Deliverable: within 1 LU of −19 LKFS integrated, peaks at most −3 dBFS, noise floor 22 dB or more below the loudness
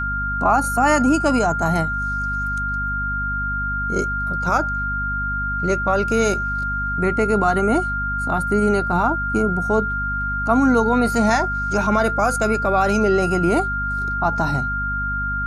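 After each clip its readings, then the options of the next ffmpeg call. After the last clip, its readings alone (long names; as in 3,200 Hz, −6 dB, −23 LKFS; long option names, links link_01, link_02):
mains hum 50 Hz; hum harmonics up to 250 Hz; level of the hum −26 dBFS; interfering tone 1,400 Hz; level of the tone −22 dBFS; integrated loudness −20.0 LKFS; sample peak −5.0 dBFS; target loudness −19.0 LKFS
→ -af "bandreject=frequency=50:width_type=h:width=6,bandreject=frequency=100:width_type=h:width=6,bandreject=frequency=150:width_type=h:width=6,bandreject=frequency=200:width_type=h:width=6,bandreject=frequency=250:width_type=h:width=6"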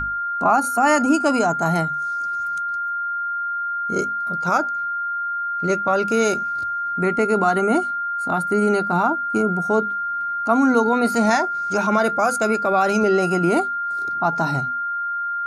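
mains hum none found; interfering tone 1,400 Hz; level of the tone −22 dBFS
→ -af "bandreject=frequency=1400:width=30"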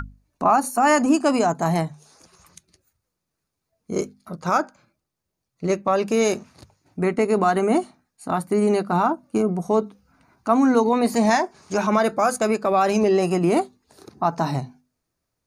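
interfering tone none found; integrated loudness −21.5 LKFS; sample peak −6.5 dBFS; target loudness −19.0 LKFS
→ -af "volume=2.5dB"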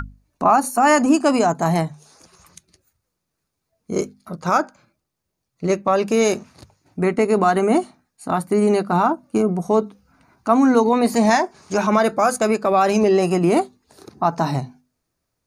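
integrated loudness −19.0 LKFS; sample peak −4.0 dBFS; background noise floor −78 dBFS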